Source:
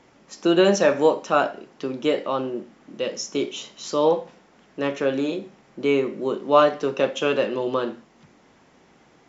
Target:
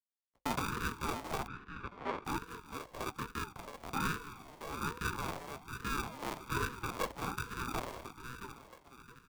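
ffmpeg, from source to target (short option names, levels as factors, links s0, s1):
-filter_complex "[0:a]afwtdn=0.0398,aderivative,acompressor=threshold=0.00891:ratio=2,alimiter=level_in=3.35:limit=0.0631:level=0:latency=1:release=378,volume=0.299,acrusher=bits=7:mix=0:aa=0.000001,flanger=delay=2.6:depth=4.5:regen=-78:speed=0.67:shape=triangular,asplit=2[s0][s1];[s1]adelay=671,lowpass=f=1300:p=1,volume=0.447,asplit=2[s2][s3];[s3]adelay=671,lowpass=f=1300:p=1,volume=0.41,asplit=2[s4][s5];[s5]adelay=671,lowpass=f=1300:p=1,volume=0.41,asplit=2[s6][s7];[s7]adelay=671,lowpass=f=1300:p=1,volume=0.41,asplit=2[s8][s9];[s9]adelay=671,lowpass=f=1300:p=1,volume=0.41[s10];[s2][s4][s6][s8][s10]amix=inputs=5:normalize=0[s11];[s0][s11]amix=inputs=2:normalize=0,acrusher=samples=39:mix=1:aa=0.000001,asplit=2[s12][s13];[s13]asplit=5[s14][s15][s16][s17][s18];[s14]adelay=214,afreqshift=-57,volume=0.2[s19];[s15]adelay=428,afreqshift=-114,volume=0.0977[s20];[s16]adelay=642,afreqshift=-171,volume=0.0479[s21];[s17]adelay=856,afreqshift=-228,volume=0.0234[s22];[s18]adelay=1070,afreqshift=-285,volume=0.0115[s23];[s19][s20][s21][s22][s23]amix=inputs=5:normalize=0[s24];[s12][s24]amix=inputs=2:normalize=0,afreqshift=230,asettb=1/sr,asplit=3[s25][s26][s27];[s25]atrim=end=1.474[s28];[s26]atrim=start=1.47:end=2.25,asetpts=PTS-STARTPTS,afade=t=in:d=0.004:c=qsin,afade=t=out:st=0.776:d=0.004:c=qsin,highpass=450,lowpass=2400[s29];[s27]atrim=start=2.246[s30];[s28][s29]acrossfade=d=0.004:c1=hsin:c2=qsin[s31];[s31][s30]acrossfade=d=0.004:c1=qsin:c2=hsin,aeval=exprs='val(0)*sin(2*PI*510*n/s+510*0.45/1.2*sin(2*PI*1.2*n/s))':c=same,volume=6.68"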